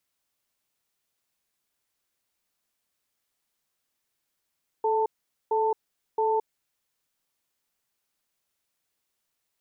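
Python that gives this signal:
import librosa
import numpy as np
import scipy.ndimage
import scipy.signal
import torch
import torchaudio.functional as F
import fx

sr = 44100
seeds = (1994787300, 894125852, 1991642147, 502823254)

y = fx.cadence(sr, length_s=1.84, low_hz=436.0, high_hz=889.0, on_s=0.22, off_s=0.45, level_db=-24.0)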